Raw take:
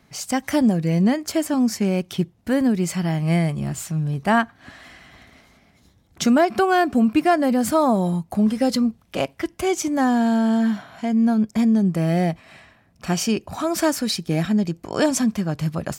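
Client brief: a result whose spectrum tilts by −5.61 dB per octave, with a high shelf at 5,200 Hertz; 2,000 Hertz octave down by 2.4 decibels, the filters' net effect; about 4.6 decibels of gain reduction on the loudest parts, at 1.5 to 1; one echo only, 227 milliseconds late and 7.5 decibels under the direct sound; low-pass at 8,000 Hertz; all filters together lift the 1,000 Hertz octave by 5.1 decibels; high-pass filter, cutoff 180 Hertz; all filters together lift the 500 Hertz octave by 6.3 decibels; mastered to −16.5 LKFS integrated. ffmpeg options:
ffmpeg -i in.wav -af "highpass=180,lowpass=8000,equalizer=frequency=500:width_type=o:gain=7.5,equalizer=frequency=1000:width_type=o:gain=4.5,equalizer=frequency=2000:width_type=o:gain=-6,highshelf=frequency=5200:gain=3,acompressor=threshold=-21dB:ratio=1.5,aecho=1:1:227:0.422,volume=5dB" out.wav

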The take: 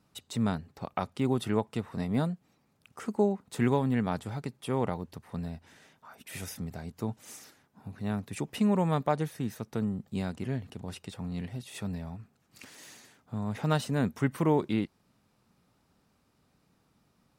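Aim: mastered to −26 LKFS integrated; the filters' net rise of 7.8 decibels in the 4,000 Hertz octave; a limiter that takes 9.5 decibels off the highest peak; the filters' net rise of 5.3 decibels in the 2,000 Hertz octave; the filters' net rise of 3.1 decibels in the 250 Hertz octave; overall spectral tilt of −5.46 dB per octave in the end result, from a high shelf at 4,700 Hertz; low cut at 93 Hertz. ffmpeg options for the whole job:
ffmpeg -i in.wav -af "highpass=93,equalizer=frequency=250:width_type=o:gain=4,equalizer=frequency=2000:width_type=o:gain=4.5,equalizer=frequency=4000:width_type=o:gain=6.5,highshelf=frequency=4700:gain=3.5,volume=6.5dB,alimiter=limit=-12.5dB:level=0:latency=1" out.wav

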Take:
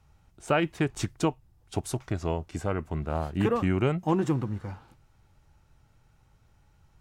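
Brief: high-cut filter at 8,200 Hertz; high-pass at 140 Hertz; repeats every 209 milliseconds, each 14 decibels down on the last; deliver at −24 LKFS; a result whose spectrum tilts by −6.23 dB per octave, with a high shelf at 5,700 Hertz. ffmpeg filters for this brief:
ffmpeg -i in.wav -af "highpass=140,lowpass=8200,highshelf=frequency=5700:gain=-8.5,aecho=1:1:209|418:0.2|0.0399,volume=6dB" out.wav

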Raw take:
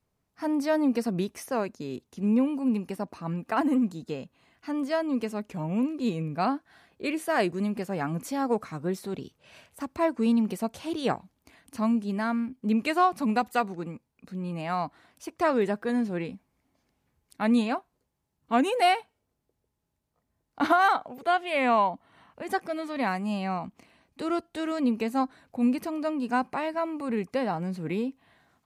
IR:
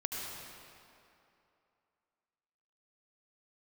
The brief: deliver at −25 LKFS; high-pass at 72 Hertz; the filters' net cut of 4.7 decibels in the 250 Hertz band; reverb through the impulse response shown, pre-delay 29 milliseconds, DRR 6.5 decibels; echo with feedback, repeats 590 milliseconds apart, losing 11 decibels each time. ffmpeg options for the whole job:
-filter_complex "[0:a]highpass=72,equalizer=frequency=250:width_type=o:gain=-5.5,aecho=1:1:590|1180|1770:0.282|0.0789|0.0221,asplit=2[link_01][link_02];[1:a]atrim=start_sample=2205,adelay=29[link_03];[link_02][link_03]afir=irnorm=-1:irlink=0,volume=-9.5dB[link_04];[link_01][link_04]amix=inputs=2:normalize=0,volume=4.5dB"

